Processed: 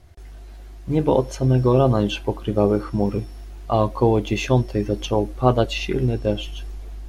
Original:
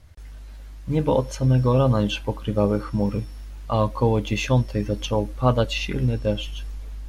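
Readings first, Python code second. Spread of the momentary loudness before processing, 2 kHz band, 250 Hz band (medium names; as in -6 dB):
17 LU, 0.0 dB, +2.5 dB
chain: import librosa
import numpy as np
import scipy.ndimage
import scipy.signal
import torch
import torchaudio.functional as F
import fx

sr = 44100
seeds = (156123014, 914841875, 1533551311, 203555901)

y = fx.small_body(x, sr, hz=(370.0, 700.0), ring_ms=55, db=13)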